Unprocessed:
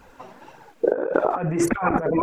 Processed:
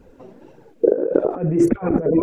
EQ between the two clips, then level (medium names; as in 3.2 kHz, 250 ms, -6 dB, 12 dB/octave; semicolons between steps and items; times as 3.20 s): resonant low shelf 640 Hz +12 dB, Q 1.5; -8.5 dB